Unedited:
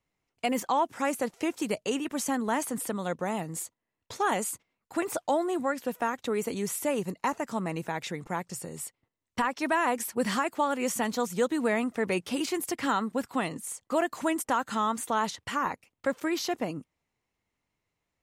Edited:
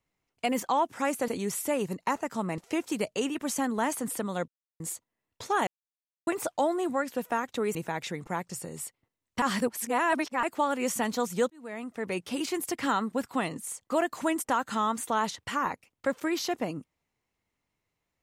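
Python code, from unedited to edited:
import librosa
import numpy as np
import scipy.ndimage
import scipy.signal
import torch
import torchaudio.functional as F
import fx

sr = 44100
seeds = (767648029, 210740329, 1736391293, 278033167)

y = fx.edit(x, sr, fx.silence(start_s=3.18, length_s=0.32),
    fx.silence(start_s=4.37, length_s=0.6),
    fx.move(start_s=6.45, length_s=1.3, to_s=1.28),
    fx.reverse_span(start_s=9.42, length_s=1.01),
    fx.fade_in_span(start_s=11.5, length_s=1.4, curve='qsin'), tone=tone)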